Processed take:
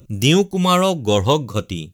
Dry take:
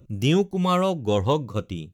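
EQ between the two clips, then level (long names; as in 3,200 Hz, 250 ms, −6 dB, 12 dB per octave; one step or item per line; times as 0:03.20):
high-shelf EQ 3,000 Hz +10.5 dB
+5.0 dB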